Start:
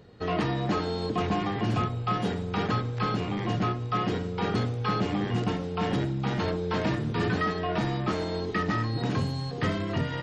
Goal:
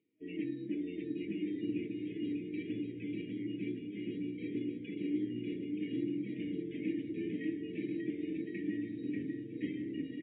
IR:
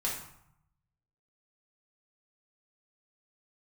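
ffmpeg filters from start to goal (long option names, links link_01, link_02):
-filter_complex "[0:a]afftdn=noise_reduction=15:noise_floor=-34,aemphasis=mode=production:type=bsi,bandreject=frequency=74.45:width_type=h:width=4,bandreject=frequency=148.9:width_type=h:width=4,bandreject=frequency=223.35:width_type=h:width=4,bandreject=frequency=297.8:width_type=h:width=4,bandreject=frequency=372.25:width_type=h:width=4,bandreject=frequency=446.7:width_type=h:width=4,bandreject=frequency=521.15:width_type=h:width=4,bandreject=frequency=595.6:width_type=h:width=4,bandreject=frequency=670.05:width_type=h:width=4,bandreject=frequency=744.5:width_type=h:width=4,bandreject=frequency=818.95:width_type=h:width=4,bandreject=frequency=893.4:width_type=h:width=4,bandreject=frequency=967.85:width_type=h:width=4,afftfilt=real='re*(1-between(b*sr/4096,630,1600))':imag='im*(1-between(b*sr/4096,630,1600))':win_size=4096:overlap=0.75,adynamicequalizer=threshold=0.00355:dfrequency=130:dqfactor=1.6:tfrequency=130:tqfactor=1.6:attack=5:release=100:ratio=0.375:range=2.5:mode=boostabove:tftype=bell,areverse,acompressor=mode=upward:threshold=-41dB:ratio=2.5,areverse,asplit=3[link_01][link_02][link_03];[link_01]bandpass=frequency=300:width_type=q:width=8,volume=0dB[link_04];[link_02]bandpass=frequency=870:width_type=q:width=8,volume=-6dB[link_05];[link_03]bandpass=frequency=2240:width_type=q:width=8,volume=-9dB[link_06];[link_04][link_05][link_06]amix=inputs=3:normalize=0,flanger=delay=5.6:depth=7.2:regen=-82:speed=0.2:shape=triangular,aecho=1:1:590|1062|1440|1742|1983:0.631|0.398|0.251|0.158|0.1,volume=8.5dB" -ar 8000 -c:a libmp3lame -b:a 24k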